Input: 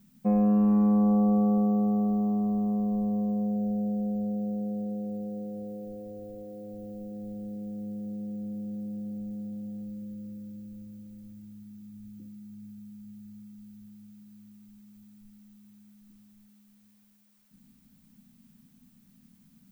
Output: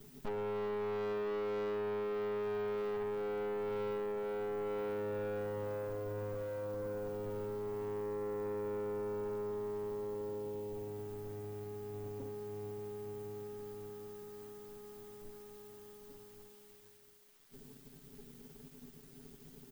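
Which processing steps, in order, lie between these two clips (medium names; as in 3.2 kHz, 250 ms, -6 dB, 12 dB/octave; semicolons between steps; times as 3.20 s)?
comb filter that takes the minimum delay 7.7 ms; comb 7.1 ms, depth 51%; peak limiter -28.5 dBFS, peak gain reduction 10 dB; waveshaping leveller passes 3; trim -5.5 dB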